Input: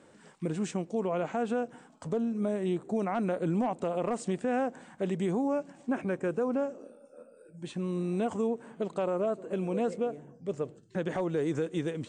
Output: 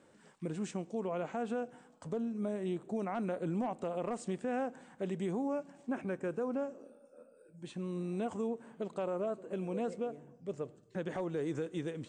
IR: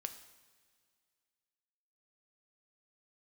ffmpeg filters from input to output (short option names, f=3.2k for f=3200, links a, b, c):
-filter_complex "[0:a]asplit=2[a][b];[1:a]atrim=start_sample=2205,asetrate=41454,aresample=44100[c];[b][c]afir=irnorm=-1:irlink=0,volume=-8.5dB[d];[a][d]amix=inputs=2:normalize=0,volume=-8dB"